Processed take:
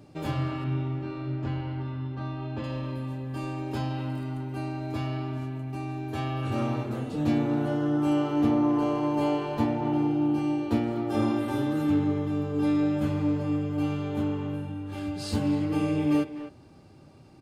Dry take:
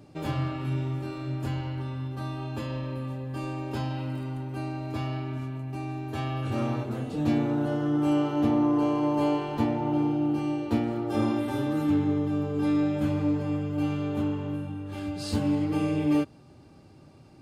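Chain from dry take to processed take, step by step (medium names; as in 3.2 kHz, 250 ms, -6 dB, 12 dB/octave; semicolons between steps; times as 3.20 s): 0.64–2.64 s: distance through air 180 m; speakerphone echo 250 ms, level -11 dB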